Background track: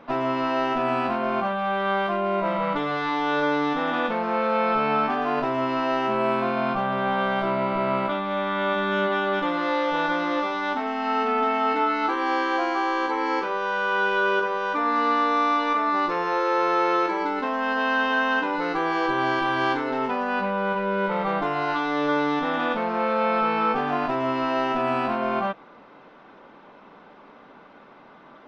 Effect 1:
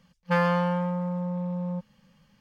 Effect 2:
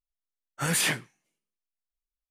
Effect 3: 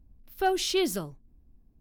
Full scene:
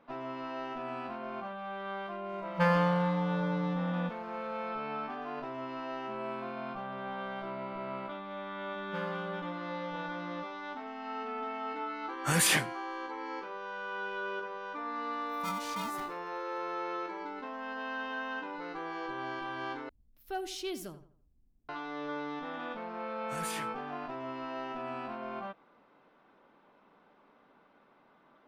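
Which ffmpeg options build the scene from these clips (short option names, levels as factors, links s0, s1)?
-filter_complex "[1:a]asplit=2[s0][s1];[2:a]asplit=2[s2][s3];[3:a]asplit=2[s4][s5];[0:a]volume=0.178[s6];[s4]aeval=exprs='val(0)*sgn(sin(2*PI*570*n/s))':c=same[s7];[s5]asplit=2[s8][s9];[s9]adelay=84,lowpass=f=2500:p=1,volume=0.237,asplit=2[s10][s11];[s11]adelay=84,lowpass=f=2500:p=1,volume=0.37,asplit=2[s12][s13];[s13]adelay=84,lowpass=f=2500:p=1,volume=0.37,asplit=2[s14][s15];[s15]adelay=84,lowpass=f=2500:p=1,volume=0.37[s16];[s8][s10][s12][s14][s16]amix=inputs=5:normalize=0[s17];[s6]asplit=2[s18][s19];[s18]atrim=end=19.894[s20];[s17]atrim=end=1.8,asetpts=PTS-STARTPTS,volume=0.266[s21];[s19]atrim=start=21.686[s22];[s0]atrim=end=2.4,asetpts=PTS-STARTPTS,volume=0.708,afade=t=in:d=0.004:c=hsin,afade=t=out:st=2.396:d=0.004:c=hsin,adelay=2290[s23];[s1]atrim=end=2.4,asetpts=PTS-STARTPTS,volume=0.141,afade=t=in:d=0.004:c=hsin,afade=t=out:st=2.396:d=0.004:c=hsin,adelay=8630[s24];[s2]atrim=end=2.3,asetpts=PTS-STARTPTS,volume=0.944,afade=t=in:d=0.004:c=hsin,afade=t=out:st=2.296:d=0.004:c=hsin,adelay=11660[s25];[s7]atrim=end=1.8,asetpts=PTS-STARTPTS,volume=0.178,afade=t=in:d=0.004:c=hsin,afade=t=out:st=1.796:d=0.004:c=hsin,adelay=15020[s26];[s3]atrim=end=2.3,asetpts=PTS-STARTPTS,volume=0.178,afade=t=in:d=0.004:c=hsin,afade=t=out:st=2.296:d=0.004:c=hsin,adelay=22700[s27];[s20][s21]acrossfade=d=0.004:c1=hsin:c2=hsin[s28];[s28][s22]acrossfade=d=0.004:c1=hsin:c2=hsin[s29];[s29][s23][s24][s25][s26][s27]amix=inputs=6:normalize=0"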